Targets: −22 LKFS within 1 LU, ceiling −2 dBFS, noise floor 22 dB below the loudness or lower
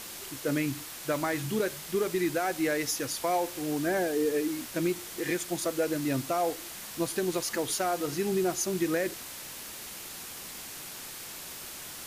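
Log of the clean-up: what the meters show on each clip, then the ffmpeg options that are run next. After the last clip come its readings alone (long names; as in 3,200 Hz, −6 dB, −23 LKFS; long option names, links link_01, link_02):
background noise floor −42 dBFS; target noise floor −53 dBFS; integrated loudness −31.0 LKFS; sample peak −17.0 dBFS; target loudness −22.0 LKFS
→ -af "afftdn=noise_reduction=11:noise_floor=-42"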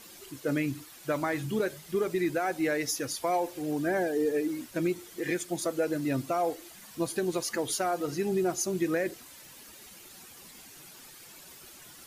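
background noise floor −51 dBFS; target noise floor −53 dBFS
→ -af "afftdn=noise_reduction=6:noise_floor=-51"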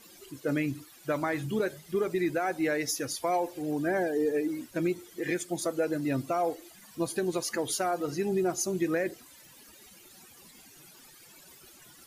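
background noise floor −55 dBFS; integrated loudness −30.5 LKFS; sample peak −17.5 dBFS; target loudness −22.0 LKFS
→ -af "volume=8.5dB"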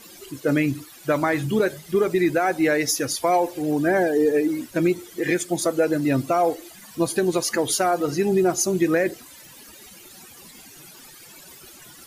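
integrated loudness −22.0 LKFS; sample peak −9.0 dBFS; background noise floor −46 dBFS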